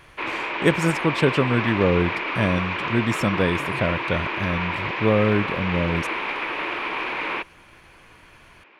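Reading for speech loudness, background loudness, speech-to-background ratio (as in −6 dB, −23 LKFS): −23.5 LKFS, −26.5 LKFS, 3.0 dB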